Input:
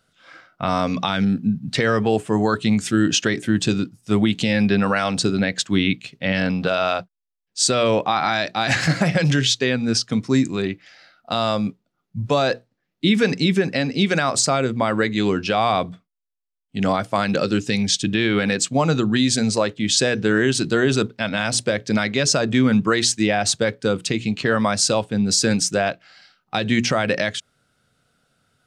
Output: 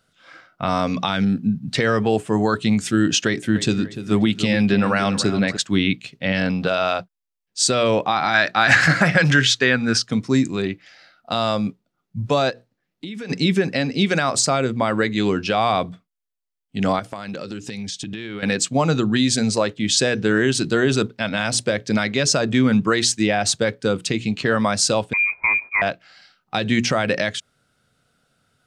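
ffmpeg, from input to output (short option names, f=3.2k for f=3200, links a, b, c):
-filter_complex "[0:a]asettb=1/sr,asplit=3[a][b][c];[a]atrim=end=3.264[d];[b]atrim=start=3.26:end=5.57,asetpts=PTS-STARTPTS,afade=t=in:d=0.004:c=qsin,afade=t=out:st=2.306:d=0.004:c=qsin,asplit=2[e][f];[f]adelay=294,lowpass=f=2.4k:p=1,volume=-11dB,asplit=2[g][h];[h]adelay=294,lowpass=f=2.4k:p=1,volume=0.46,asplit=2[i][j];[j]adelay=294,lowpass=f=2.4k:p=1,volume=0.46,asplit=2[k][l];[l]adelay=294,lowpass=f=2.4k:p=1,volume=0.46,asplit=2[m][n];[n]adelay=294,lowpass=f=2.4k:p=1,volume=0.46[o];[e][g][i][k][m][o]amix=inputs=6:normalize=0,atrim=end_sample=101871[p];[c]atrim=start=5.566[q];[d][p]acrossfade=d=0.004:c1=hsin:c2=qsin[r];[r][q]acrossfade=d=0.004:c1=qsin:c2=hsin,asettb=1/sr,asplit=3[s][t][u];[s]atrim=end=8.344[v];[t]atrim=start=8.34:end=10.02,asetpts=PTS-STARTPTS,afade=t=in:d=0.004:c=qsin,afade=t=out:st=1.676:d=0.004:c=qsin,equalizer=f=1.5k:w=1.3:g=10.5[w];[u]atrim=start=10.016[x];[v][w]acrossfade=d=0.004:c1=hsin:c2=qsin[y];[y][x]acrossfade=d=0.004:c1=qsin:c2=hsin,asplit=3[z][aa][ab];[z]afade=t=out:st=12.49:d=0.02[ac];[aa]acompressor=threshold=-30dB:ratio=6:attack=3.2:release=140:knee=1:detection=peak,afade=t=in:st=12.49:d=0.02,afade=t=out:st=13.29:d=0.02[ad];[ab]afade=t=in:st=13.29:d=0.02[ae];[ac][ad][ae]amix=inputs=3:normalize=0,asettb=1/sr,asplit=3[af][ag][ah];[af]atrim=end=16.994[ai];[ag]atrim=start=16.99:end=18.43,asetpts=PTS-STARTPTS,afade=t=in:d=0.004:c=qsin,afade=t=out:st=1.436:d=0.004:c=qsin,acompressor=threshold=-26dB:ratio=16:attack=3.2:release=140:knee=1:detection=peak[aj];[ah]atrim=start=18.426[ak];[ai][aj]acrossfade=d=0.004:c1=hsin:c2=qsin[al];[al][ak]acrossfade=d=0.004:c1=qsin:c2=hsin,asettb=1/sr,asplit=3[am][an][ao];[am]atrim=end=25.134[ap];[an]atrim=start=25.13:end=25.82,asetpts=PTS-STARTPTS,afade=t=in:d=0.004:c=qsin,afade=t=out:st=0.686:d=0.004:c=qsin,lowpass=f=2.2k:t=q:w=0.5098,lowpass=f=2.2k:t=q:w=0.6013,lowpass=f=2.2k:t=q:w=0.9,lowpass=f=2.2k:t=q:w=2.563,afreqshift=-2600[aq];[ao]atrim=start=25.816[ar];[ap][aq]acrossfade=d=0.004:c1=hsin:c2=qsin[as];[as][ar]acrossfade=d=0.004:c1=qsin:c2=hsin"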